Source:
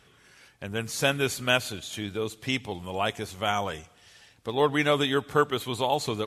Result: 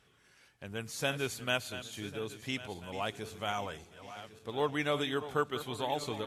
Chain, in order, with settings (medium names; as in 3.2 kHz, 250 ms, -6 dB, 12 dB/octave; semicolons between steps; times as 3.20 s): backward echo that repeats 549 ms, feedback 58%, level -12.5 dB; trim -8.5 dB